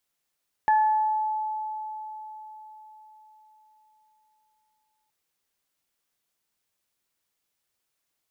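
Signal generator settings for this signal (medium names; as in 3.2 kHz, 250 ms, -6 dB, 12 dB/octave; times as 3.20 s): additive tone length 4.42 s, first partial 863 Hz, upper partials -10.5 dB, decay 4.50 s, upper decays 0.80 s, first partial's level -16.5 dB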